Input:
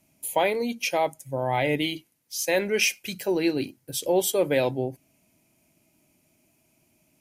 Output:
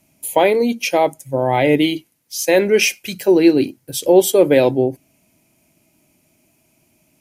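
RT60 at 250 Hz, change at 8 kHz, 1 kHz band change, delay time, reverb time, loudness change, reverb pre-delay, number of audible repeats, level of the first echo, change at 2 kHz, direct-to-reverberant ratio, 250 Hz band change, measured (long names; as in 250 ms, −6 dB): no reverb audible, +6.0 dB, +8.0 dB, no echo audible, no reverb audible, +10.0 dB, no reverb audible, no echo audible, no echo audible, +6.0 dB, no reverb audible, +12.5 dB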